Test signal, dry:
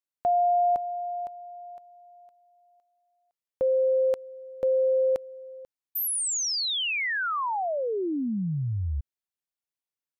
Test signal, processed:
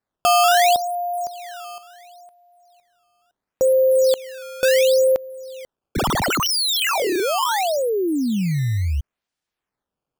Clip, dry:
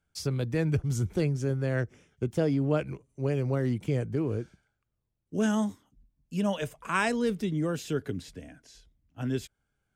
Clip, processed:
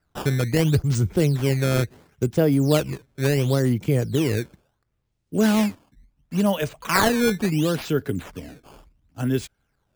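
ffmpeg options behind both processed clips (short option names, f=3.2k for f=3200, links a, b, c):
-af "acrusher=samples=13:mix=1:aa=0.000001:lfo=1:lforange=20.8:lforate=0.72,volume=7.5dB"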